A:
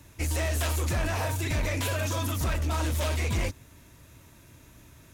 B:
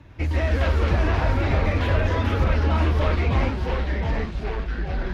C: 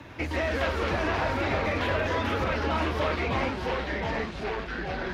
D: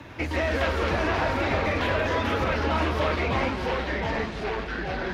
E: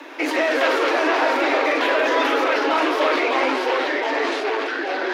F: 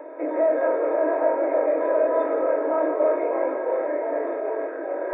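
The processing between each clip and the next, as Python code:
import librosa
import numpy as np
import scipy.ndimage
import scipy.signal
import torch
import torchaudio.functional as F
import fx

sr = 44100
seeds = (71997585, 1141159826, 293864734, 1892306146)

y1 = fx.echo_pitch(x, sr, ms=98, semitones=-3, count=3, db_per_echo=-3.0)
y1 = fx.air_absorb(y1, sr, metres=310.0)
y1 = y1 * librosa.db_to_amplitude(5.5)
y2 = fx.highpass(y1, sr, hz=330.0, slope=6)
y2 = fx.band_squash(y2, sr, depth_pct=40)
y3 = y2 + 10.0 ** (-13.5 / 20.0) * np.pad(y2, (int(166 * sr / 1000.0), 0))[:len(y2)]
y3 = y3 * librosa.db_to_amplitude(2.0)
y4 = scipy.signal.sosfilt(scipy.signal.butter(16, 270.0, 'highpass', fs=sr, output='sos'), y3)
y4 = fx.sustainer(y4, sr, db_per_s=26.0)
y4 = y4 * librosa.db_to_amplitude(6.5)
y5 = fx.bin_compress(y4, sr, power=0.2)
y5 = fx.high_shelf(y5, sr, hz=4800.0, db=6.5)
y5 = fx.spectral_expand(y5, sr, expansion=4.0)
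y5 = y5 * librosa.db_to_amplitude(-3.0)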